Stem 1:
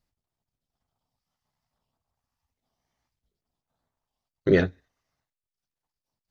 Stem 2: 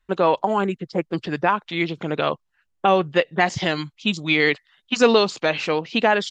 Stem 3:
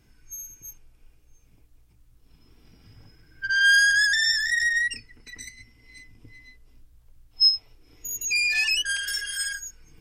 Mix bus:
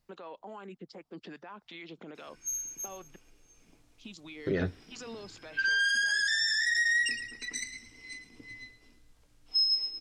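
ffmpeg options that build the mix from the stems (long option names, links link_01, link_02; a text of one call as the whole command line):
ffmpeg -i stem1.wav -i stem2.wav -i stem3.wav -filter_complex "[0:a]volume=3dB[link_01];[1:a]acompressor=threshold=-25dB:ratio=6,alimiter=level_in=0.5dB:limit=-24dB:level=0:latency=1:release=15,volume=-0.5dB,acrossover=split=660[link_02][link_03];[link_02]aeval=exprs='val(0)*(1-0.5/2+0.5/2*cos(2*PI*2.5*n/s))':channel_layout=same[link_04];[link_03]aeval=exprs='val(0)*(1-0.5/2-0.5/2*cos(2*PI*2.5*n/s))':channel_layout=same[link_05];[link_04][link_05]amix=inputs=2:normalize=0,volume=-8.5dB,asplit=3[link_06][link_07][link_08];[link_06]atrim=end=3.16,asetpts=PTS-STARTPTS,afade=type=out:start_time=3.156:duration=0.004:curve=hsin[link_09];[link_07]atrim=start=3.16:end=3.97,asetpts=PTS-STARTPTS,volume=0[link_10];[link_08]atrim=start=3.97,asetpts=PTS-STARTPTS,afade=type=in:duration=0.004:curve=hsin[link_11];[link_09][link_10][link_11]concat=n=3:v=0:a=1,asplit=2[link_12][link_13];[2:a]lowpass=7400,highshelf=frequency=5800:gain=5.5,adelay=2150,volume=3dB,asplit=2[link_14][link_15];[link_15]volume=-13.5dB[link_16];[link_13]apad=whole_len=277999[link_17];[link_01][link_17]sidechaincompress=threshold=-49dB:ratio=8:attack=11:release=293[link_18];[link_12][link_14]amix=inputs=2:normalize=0,highpass=frequency=190:width=0.5412,highpass=frequency=190:width=1.3066,acompressor=threshold=-21dB:ratio=6,volume=0dB[link_19];[link_16]aecho=0:1:112|224|336|448|560|672:1|0.44|0.194|0.0852|0.0375|0.0165[link_20];[link_18][link_19][link_20]amix=inputs=3:normalize=0,alimiter=limit=-21dB:level=0:latency=1:release=46" out.wav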